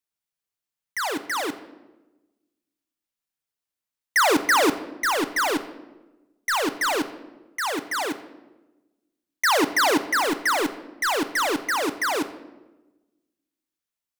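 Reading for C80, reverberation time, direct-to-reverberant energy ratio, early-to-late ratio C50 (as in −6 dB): 15.0 dB, 1.1 s, 10.5 dB, 13.0 dB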